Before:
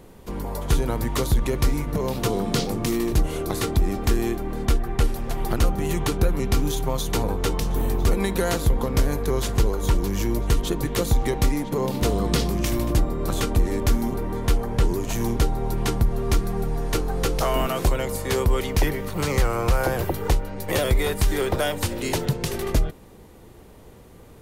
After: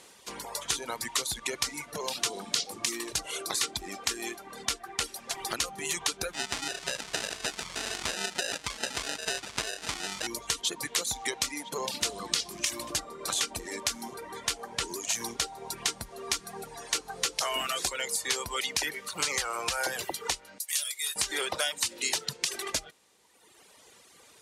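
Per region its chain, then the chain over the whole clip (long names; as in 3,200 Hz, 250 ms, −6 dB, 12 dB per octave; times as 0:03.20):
0:06.33–0:10.27: sample-rate reduction 1,100 Hz + highs frequency-modulated by the lows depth 0.14 ms
0:20.58–0:21.16: first-order pre-emphasis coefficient 0.97 + double-tracking delay 29 ms −12 dB
whole clip: meter weighting curve ITU-R 468; reverb reduction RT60 1.5 s; downward compressor 5 to 1, threshold −23 dBFS; level −2.5 dB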